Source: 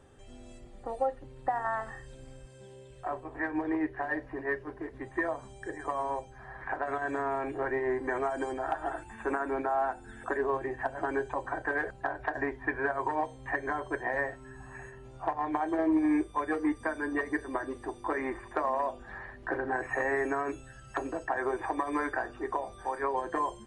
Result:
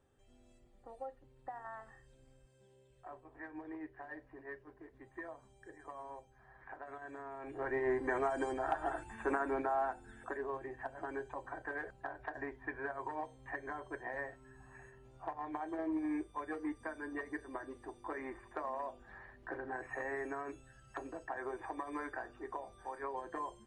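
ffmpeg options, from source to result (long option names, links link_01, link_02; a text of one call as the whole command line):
ffmpeg -i in.wav -af "volume=-3dB,afade=type=in:start_time=7.38:duration=0.49:silence=0.237137,afade=type=out:start_time=9.41:duration=0.99:silence=0.421697" out.wav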